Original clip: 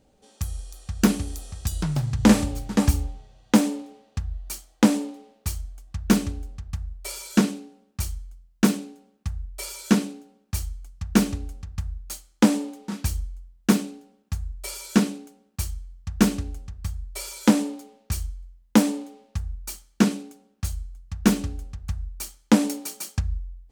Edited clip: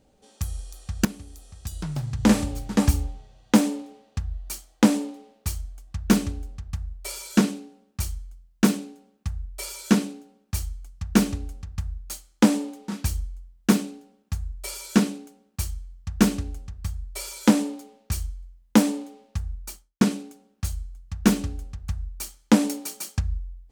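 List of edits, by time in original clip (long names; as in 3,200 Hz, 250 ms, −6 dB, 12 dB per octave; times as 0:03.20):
0:01.05–0:02.78: fade in, from −16.5 dB
0:19.60–0:20.01: fade out and dull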